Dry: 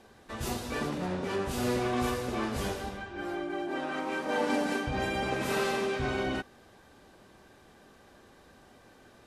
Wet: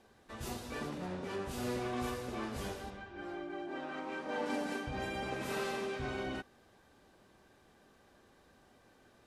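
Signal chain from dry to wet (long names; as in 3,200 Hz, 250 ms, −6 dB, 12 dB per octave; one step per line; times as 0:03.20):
0:02.90–0:04.46: high-frequency loss of the air 51 metres
level −7.5 dB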